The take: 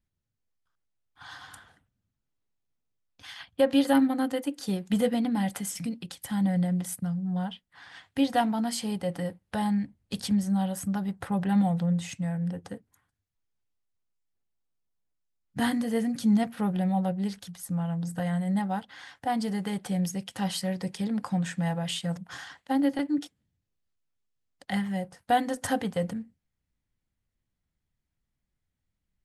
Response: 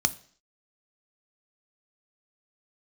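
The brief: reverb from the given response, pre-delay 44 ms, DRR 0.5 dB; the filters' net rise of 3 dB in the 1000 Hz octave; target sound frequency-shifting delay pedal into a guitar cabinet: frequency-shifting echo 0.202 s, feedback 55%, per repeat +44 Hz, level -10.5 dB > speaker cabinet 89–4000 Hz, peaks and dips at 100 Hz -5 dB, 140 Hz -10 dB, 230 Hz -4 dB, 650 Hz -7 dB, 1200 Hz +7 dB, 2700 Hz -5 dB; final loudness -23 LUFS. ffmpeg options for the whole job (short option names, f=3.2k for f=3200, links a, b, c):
-filter_complex "[0:a]equalizer=f=1k:t=o:g=6.5,asplit=2[a][b];[1:a]atrim=start_sample=2205,adelay=44[c];[b][c]afir=irnorm=-1:irlink=0,volume=-9.5dB[d];[a][d]amix=inputs=2:normalize=0,asplit=7[e][f][g][h][i][j][k];[f]adelay=202,afreqshift=44,volume=-10.5dB[l];[g]adelay=404,afreqshift=88,volume=-15.7dB[m];[h]adelay=606,afreqshift=132,volume=-20.9dB[n];[i]adelay=808,afreqshift=176,volume=-26.1dB[o];[j]adelay=1010,afreqshift=220,volume=-31.3dB[p];[k]adelay=1212,afreqshift=264,volume=-36.5dB[q];[e][l][m][n][o][p][q]amix=inputs=7:normalize=0,highpass=89,equalizer=f=100:t=q:w=4:g=-5,equalizer=f=140:t=q:w=4:g=-10,equalizer=f=230:t=q:w=4:g=-4,equalizer=f=650:t=q:w=4:g=-7,equalizer=f=1.2k:t=q:w=4:g=7,equalizer=f=2.7k:t=q:w=4:g=-5,lowpass=f=4k:w=0.5412,lowpass=f=4k:w=1.3066,volume=3dB"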